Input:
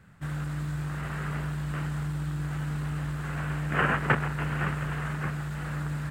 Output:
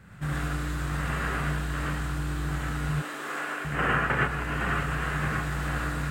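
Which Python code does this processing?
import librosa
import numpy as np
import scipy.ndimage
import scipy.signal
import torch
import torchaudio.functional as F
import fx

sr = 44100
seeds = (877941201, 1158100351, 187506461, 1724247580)

y = fx.rider(x, sr, range_db=4, speed_s=0.5)
y = fx.highpass(y, sr, hz=300.0, slope=24, at=(2.89, 3.65))
y = fx.rev_gated(y, sr, seeds[0], gate_ms=140, shape='rising', drr_db=-3.0)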